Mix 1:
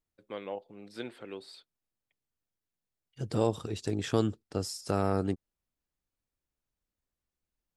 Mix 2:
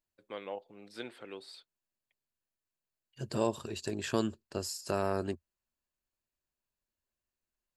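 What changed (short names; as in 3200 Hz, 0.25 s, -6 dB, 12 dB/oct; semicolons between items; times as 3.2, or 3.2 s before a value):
second voice: add ripple EQ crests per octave 1.4, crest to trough 7 dB; master: add low shelf 370 Hz -7 dB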